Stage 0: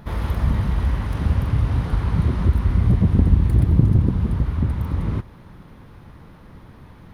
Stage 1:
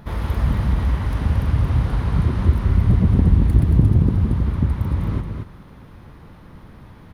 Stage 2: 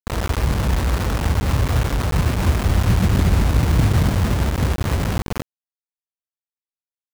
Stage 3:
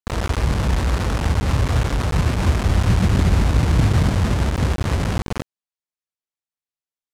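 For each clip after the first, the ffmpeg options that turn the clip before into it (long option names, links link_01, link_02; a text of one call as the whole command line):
ffmpeg -i in.wav -af "aecho=1:1:226:0.531" out.wav
ffmpeg -i in.wav -af "lowpass=frequency=1600:width=0.5412,lowpass=frequency=1600:width=1.3066,asoftclip=type=tanh:threshold=-8dB,acrusher=bits=3:mix=0:aa=0.000001" out.wav
ffmpeg -i in.wav -af "lowpass=9700" out.wav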